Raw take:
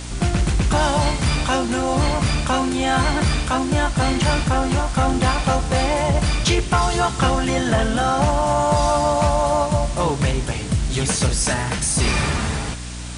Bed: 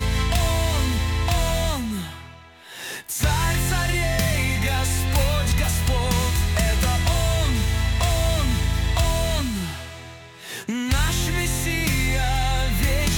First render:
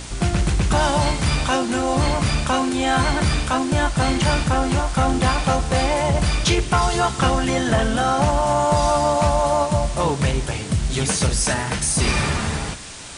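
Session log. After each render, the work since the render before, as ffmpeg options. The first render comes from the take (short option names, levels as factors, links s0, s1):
-af "bandreject=f=60:t=h:w=4,bandreject=f=120:t=h:w=4,bandreject=f=180:t=h:w=4,bandreject=f=240:t=h:w=4,bandreject=f=300:t=h:w=4"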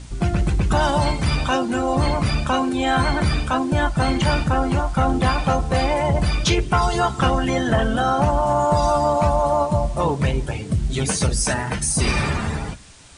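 -af "afftdn=nr=11:nf=-29"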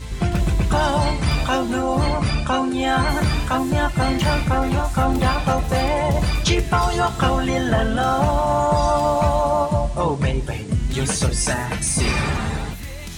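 -filter_complex "[1:a]volume=0.251[s0];[0:a][s0]amix=inputs=2:normalize=0"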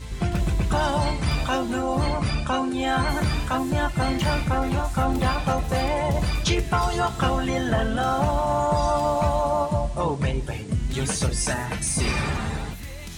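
-af "volume=0.631"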